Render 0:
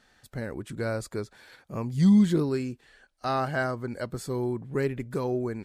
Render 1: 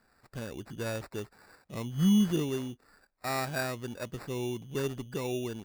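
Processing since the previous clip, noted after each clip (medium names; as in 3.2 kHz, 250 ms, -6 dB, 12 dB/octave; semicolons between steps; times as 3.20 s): sample-and-hold 14×; trim -5 dB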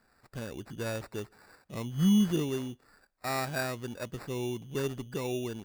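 reverberation RT60 0.30 s, pre-delay 113 ms, DRR 33 dB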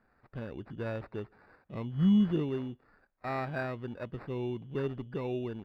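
distance through air 420 m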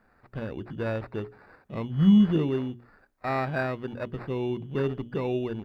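hum notches 60/120/180/240/300/360/420 Hz; trim +6.5 dB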